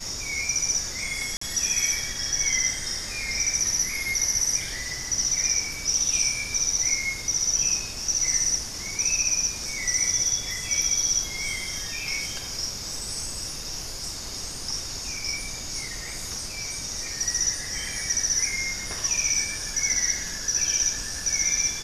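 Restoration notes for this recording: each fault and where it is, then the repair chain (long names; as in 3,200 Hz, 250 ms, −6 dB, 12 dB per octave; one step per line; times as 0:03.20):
0:01.37–0:01.41: drop-out 44 ms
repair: repair the gap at 0:01.37, 44 ms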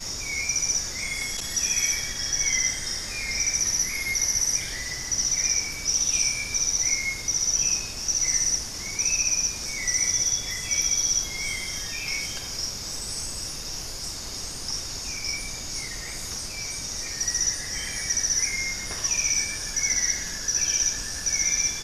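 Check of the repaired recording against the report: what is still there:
none of them is left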